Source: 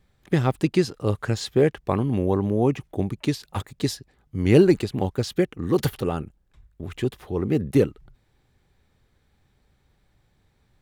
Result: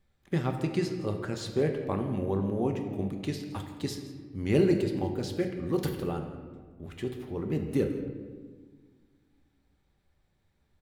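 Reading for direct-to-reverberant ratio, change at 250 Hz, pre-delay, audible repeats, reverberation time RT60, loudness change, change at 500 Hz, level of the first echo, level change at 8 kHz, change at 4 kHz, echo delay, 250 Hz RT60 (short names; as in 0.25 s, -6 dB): 3.5 dB, -7.0 dB, 3 ms, 1, 1.5 s, -7.5 dB, -7.5 dB, -16.5 dB, -8.0 dB, -8.0 dB, 0.167 s, 2.2 s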